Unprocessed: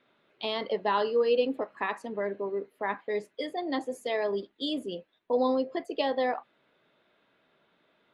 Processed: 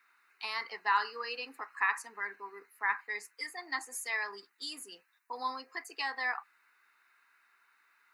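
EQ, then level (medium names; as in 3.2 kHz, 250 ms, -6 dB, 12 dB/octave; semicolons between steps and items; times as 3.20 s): high-pass 940 Hz 12 dB/octave; treble shelf 2.2 kHz +12 dB; static phaser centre 1.4 kHz, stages 4; +2.0 dB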